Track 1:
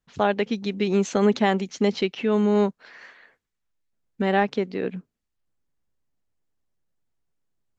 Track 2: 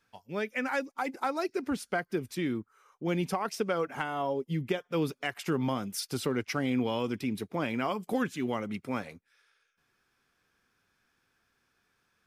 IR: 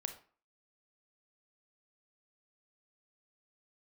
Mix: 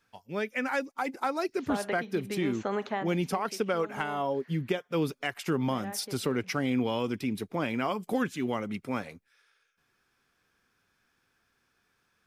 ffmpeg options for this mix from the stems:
-filter_complex "[0:a]acrossover=split=550|2200[link_01][link_02][link_03];[link_01]acompressor=threshold=-34dB:ratio=4[link_04];[link_02]acompressor=threshold=-25dB:ratio=4[link_05];[link_03]acompressor=threshold=-49dB:ratio=4[link_06];[link_04][link_05][link_06]amix=inputs=3:normalize=0,adelay=1500,volume=-7dB,afade=type=out:start_time=2.85:duration=0.43:silence=0.334965,asplit=2[link_07][link_08];[link_08]volume=-3dB[link_09];[1:a]volume=1dB,asplit=2[link_10][link_11];[link_11]apad=whole_len=409422[link_12];[link_07][link_12]sidechaincompress=threshold=-33dB:ratio=8:attack=16:release=247[link_13];[2:a]atrim=start_sample=2205[link_14];[link_09][link_14]afir=irnorm=-1:irlink=0[link_15];[link_13][link_10][link_15]amix=inputs=3:normalize=0"

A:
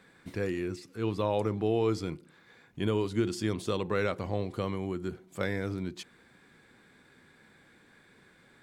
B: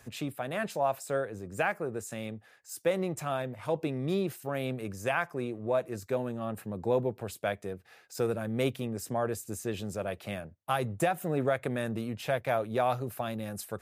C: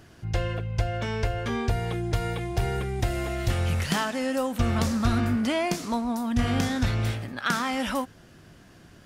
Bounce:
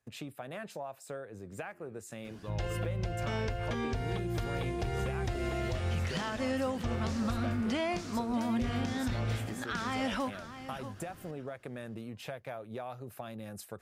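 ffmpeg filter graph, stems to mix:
ffmpeg -i stem1.wav -i stem2.wav -i stem3.wav -filter_complex "[0:a]adelay=1250,volume=-10.5dB[link_01];[1:a]highshelf=frequency=10000:gain=-5,volume=-4dB,asplit=2[link_02][link_03];[2:a]acrossover=split=7500[link_04][link_05];[link_05]acompressor=threshold=-58dB:ratio=4:attack=1:release=60[link_06];[link_04][link_06]amix=inputs=2:normalize=0,alimiter=limit=-18dB:level=0:latency=1:release=259,adelay=2250,volume=-3.5dB,asplit=2[link_07][link_08];[link_08]volume=-14dB[link_09];[link_03]apad=whole_len=435665[link_10];[link_01][link_10]sidechaincompress=threshold=-48dB:ratio=8:attack=16:release=260[link_11];[link_11][link_02]amix=inputs=2:normalize=0,agate=range=-21dB:threshold=-53dB:ratio=16:detection=peak,acompressor=threshold=-38dB:ratio=6,volume=0dB[link_12];[link_09]aecho=0:1:637|1274|1911:1|0.18|0.0324[link_13];[link_07][link_12][link_13]amix=inputs=3:normalize=0,alimiter=limit=-24dB:level=0:latency=1:release=169" out.wav

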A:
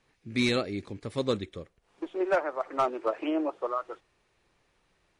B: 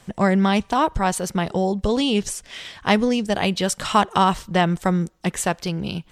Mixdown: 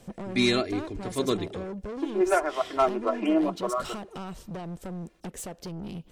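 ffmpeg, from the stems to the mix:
ffmpeg -i stem1.wav -i stem2.wav -filter_complex "[0:a]aecho=1:1:2.9:0.72,bandreject=frequency=55.48:width_type=h:width=4,bandreject=frequency=110.96:width_type=h:width=4,bandreject=frequency=166.44:width_type=h:width=4,bandreject=frequency=221.92:width_type=h:width=4,bandreject=frequency=277.4:width_type=h:width=4,bandreject=frequency=332.88:width_type=h:width=4,bandreject=frequency=388.36:width_type=h:width=4,bandreject=frequency=443.84:width_type=h:width=4,volume=1.5dB[link_01];[1:a]equalizer=frequency=125:width_type=o:width=1:gain=-3,equalizer=frequency=250:width_type=o:width=1:gain=3,equalizer=frequency=500:width_type=o:width=1:gain=5,equalizer=frequency=1000:width_type=o:width=1:gain=-7,equalizer=frequency=2000:width_type=o:width=1:gain=-8,equalizer=frequency=4000:width_type=o:width=1:gain=-4,equalizer=frequency=8000:width_type=o:width=1:gain=-3,acompressor=threshold=-27dB:ratio=6,asoftclip=type=tanh:threshold=-32.5dB,volume=-0.5dB[link_02];[link_01][link_02]amix=inputs=2:normalize=0" out.wav

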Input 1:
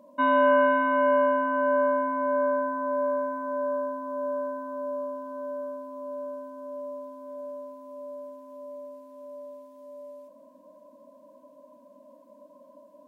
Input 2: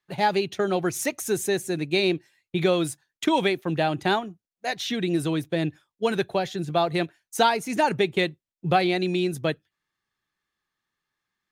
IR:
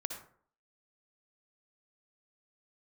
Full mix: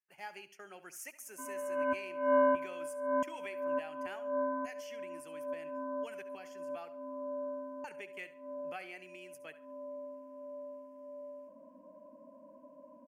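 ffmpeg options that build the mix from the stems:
-filter_complex "[0:a]adelay=1200,volume=-3.5dB,asplit=2[link_01][link_02];[link_02]volume=-15.5dB[link_03];[1:a]highpass=200,aderivative,volume=-7dB,asplit=3[link_04][link_05][link_06];[link_04]atrim=end=6.9,asetpts=PTS-STARTPTS,afade=type=out:start_time=6.896:duration=0.004:curve=hsin[link_07];[link_05]atrim=start=6.9:end=7.84,asetpts=PTS-STARTPTS,volume=0[link_08];[link_06]atrim=start=7.84,asetpts=PTS-STARTPTS,afade=type=in:duration=0.004:curve=hsin[link_09];[link_07][link_08][link_09]concat=n=3:v=0:a=1,asplit=4[link_10][link_11][link_12][link_13];[link_11]volume=-14dB[link_14];[link_12]volume=-14.5dB[link_15];[link_13]apad=whole_len=629335[link_16];[link_01][link_16]sidechaincompress=threshold=-59dB:ratio=8:attack=42:release=188[link_17];[2:a]atrim=start_sample=2205[link_18];[link_14][link_18]afir=irnorm=-1:irlink=0[link_19];[link_03][link_15]amix=inputs=2:normalize=0,aecho=0:1:70|140|210|280:1|0.29|0.0841|0.0244[link_20];[link_17][link_10][link_19][link_20]amix=inputs=4:normalize=0,asuperstop=centerf=3800:order=4:qfactor=2.1,bass=frequency=250:gain=6,treble=frequency=4000:gain=-12"

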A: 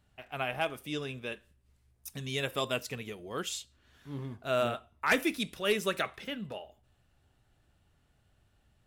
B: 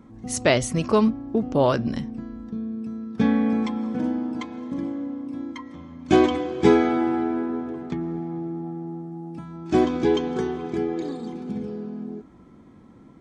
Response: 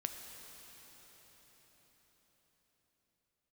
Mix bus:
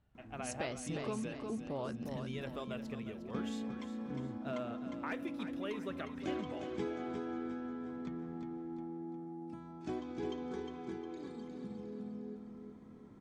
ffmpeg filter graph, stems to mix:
-filter_complex "[0:a]lowpass=frequency=1400:poles=1,acompressor=threshold=-37dB:ratio=3,volume=-4dB,asplit=2[link_01][link_02];[link_02]volume=-11dB[link_03];[1:a]acompressor=threshold=-37dB:ratio=2,adelay=150,volume=-9.5dB,asplit=2[link_04][link_05];[link_05]volume=-5.5dB[link_06];[link_03][link_06]amix=inputs=2:normalize=0,aecho=0:1:357|714|1071|1428|1785|2142:1|0.44|0.194|0.0852|0.0375|0.0165[link_07];[link_01][link_04][link_07]amix=inputs=3:normalize=0"

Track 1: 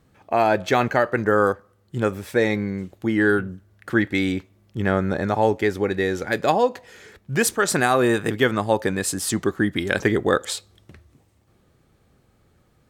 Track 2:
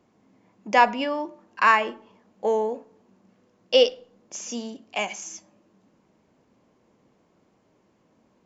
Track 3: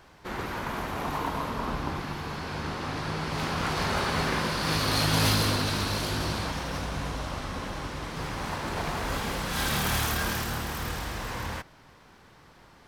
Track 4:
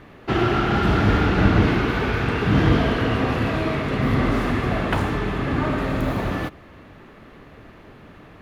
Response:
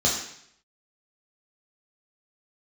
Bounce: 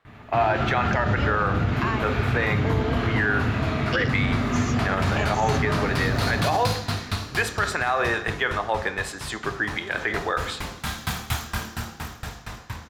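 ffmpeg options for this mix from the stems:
-filter_complex "[0:a]acrossover=split=470 3700:gain=0.0794 1 0.141[link_01][link_02][link_03];[link_01][link_02][link_03]amix=inputs=3:normalize=0,volume=2.5dB,asplit=2[link_04][link_05];[link_05]volume=-22.5dB[link_06];[1:a]adelay=200,volume=0dB[link_07];[2:a]dynaudnorm=framelen=200:gausssize=17:maxgain=6dB,aeval=exprs='val(0)*pow(10,-28*if(lt(mod(4.3*n/s,1),2*abs(4.3)/1000),1-mod(4.3*n/s,1)/(2*abs(4.3)/1000),(mod(4.3*n/s,1)-2*abs(4.3)/1000)/(1-2*abs(4.3)/1000))/20)':channel_layout=same,adelay=1300,volume=-2dB,asplit=2[link_08][link_09];[link_09]volume=-17dB[link_10];[3:a]alimiter=limit=-14dB:level=0:latency=1:release=65,adelay=50,volume=-2dB,asplit=2[link_11][link_12];[link_12]volume=-16.5dB[link_13];[link_07][link_11]amix=inputs=2:normalize=0,acompressor=threshold=-25dB:ratio=6,volume=0dB[link_14];[4:a]atrim=start_sample=2205[link_15];[link_06][link_10][link_13]amix=inputs=3:normalize=0[link_16];[link_16][link_15]afir=irnorm=-1:irlink=0[link_17];[link_04][link_08][link_14][link_17]amix=inputs=4:normalize=0,alimiter=limit=-12.5dB:level=0:latency=1:release=47"

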